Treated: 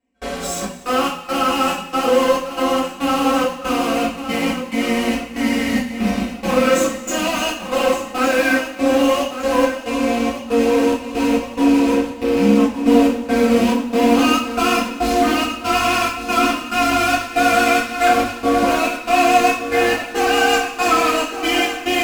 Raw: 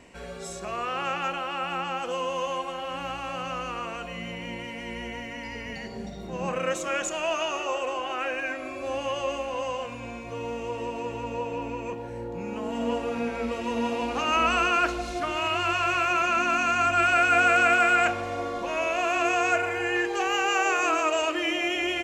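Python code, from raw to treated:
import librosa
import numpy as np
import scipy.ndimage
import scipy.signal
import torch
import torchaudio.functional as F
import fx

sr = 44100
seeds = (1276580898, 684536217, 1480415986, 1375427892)

p1 = fx.rattle_buzz(x, sr, strikes_db=-37.0, level_db=-29.0)
p2 = fx.step_gate(p1, sr, bpm=70, pattern='.xx.x.xx', floor_db=-24.0, edge_ms=4.5)
p3 = fx.fuzz(p2, sr, gain_db=40.0, gate_db=-41.0)
p4 = p2 + (p3 * librosa.db_to_amplitude(-5.5))
p5 = fx.peak_eq(p4, sr, hz=250.0, db=12.5, octaves=0.46)
p6 = fx.hum_notches(p5, sr, base_hz=60, count=4)
p7 = p6 + 0.53 * np.pad(p6, (int(3.9 * sr / 1000.0), 0))[:len(p6)]
p8 = p7 + fx.echo_feedback(p7, sr, ms=1163, feedback_pct=40, wet_db=-11.0, dry=0)
p9 = fx.rev_double_slope(p8, sr, seeds[0], early_s=0.38, late_s=1.7, knee_db=-16, drr_db=-7.0)
y = p9 * librosa.db_to_amplitude(-9.5)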